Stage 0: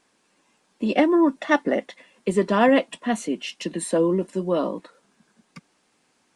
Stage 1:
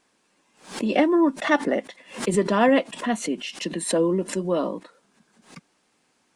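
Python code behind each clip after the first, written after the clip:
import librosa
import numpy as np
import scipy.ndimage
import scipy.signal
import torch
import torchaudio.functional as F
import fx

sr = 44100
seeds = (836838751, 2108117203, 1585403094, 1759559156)

y = fx.pre_swell(x, sr, db_per_s=140.0)
y = F.gain(torch.from_numpy(y), -1.0).numpy()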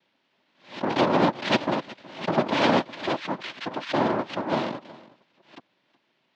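y = fx.noise_vocoder(x, sr, seeds[0], bands=2)
y = fx.cabinet(y, sr, low_hz=200.0, low_slope=12, high_hz=3600.0, hz=(450.0, 750.0, 1200.0), db=(-9, -6, -5))
y = y + 10.0 ** (-20.5 / 20.0) * np.pad(y, (int(369 * sr / 1000.0), 0))[:len(y)]
y = F.gain(torch.from_numpy(y), 1.5).numpy()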